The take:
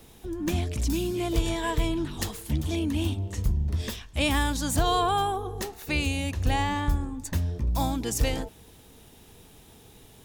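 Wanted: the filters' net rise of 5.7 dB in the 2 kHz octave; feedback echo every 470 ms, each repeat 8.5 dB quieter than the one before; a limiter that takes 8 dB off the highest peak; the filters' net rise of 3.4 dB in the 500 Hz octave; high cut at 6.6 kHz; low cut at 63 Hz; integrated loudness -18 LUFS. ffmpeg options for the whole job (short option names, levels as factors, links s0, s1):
-af "highpass=63,lowpass=6600,equalizer=f=500:t=o:g=4.5,equalizer=f=2000:t=o:g=7,alimiter=limit=0.133:level=0:latency=1,aecho=1:1:470|940|1410|1880:0.376|0.143|0.0543|0.0206,volume=3.35"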